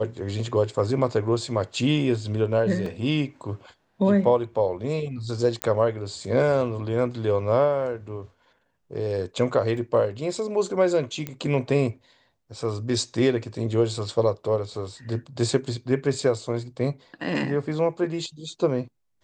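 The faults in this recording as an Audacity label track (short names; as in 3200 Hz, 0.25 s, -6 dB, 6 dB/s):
2.860000	2.860000	gap 3 ms
5.620000	5.620000	pop -9 dBFS
9.770000	9.770000	gap 2.5 ms
11.270000	11.270000	pop -16 dBFS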